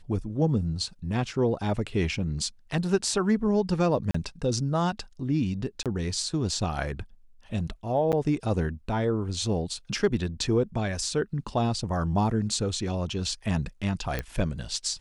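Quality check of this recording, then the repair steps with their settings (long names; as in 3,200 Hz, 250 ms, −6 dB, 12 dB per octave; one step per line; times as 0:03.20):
0:04.11–0:04.14: drop-out 34 ms
0:05.83–0:05.86: drop-out 27 ms
0:08.12–0:08.13: drop-out 8 ms
0:14.19: click −15 dBFS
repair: click removal
repair the gap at 0:04.11, 34 ms
repair the gap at 0:05.83, 27 ms
repair the gap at 0:08.12, 8 ms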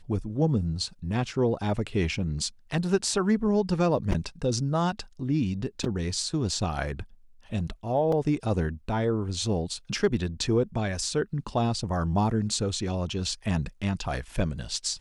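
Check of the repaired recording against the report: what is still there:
none of them is left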